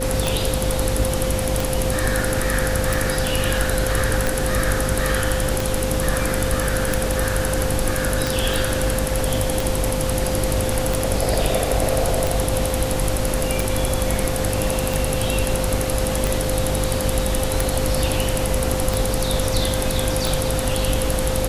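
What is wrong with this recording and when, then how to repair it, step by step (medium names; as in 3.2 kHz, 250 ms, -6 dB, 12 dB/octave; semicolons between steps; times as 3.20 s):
hum 50 Hz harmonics 6 -26 dBFS
tick 45 rpm
whine 520 Hz -25 dBFS
8.54 s: pop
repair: de-click; de-hum 50 Hz, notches 6; band-stop 520 Hz, Q 30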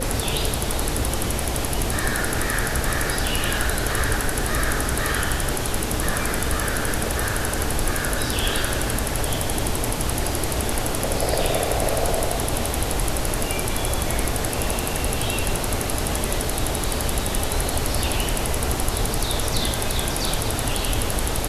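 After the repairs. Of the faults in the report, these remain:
nothing left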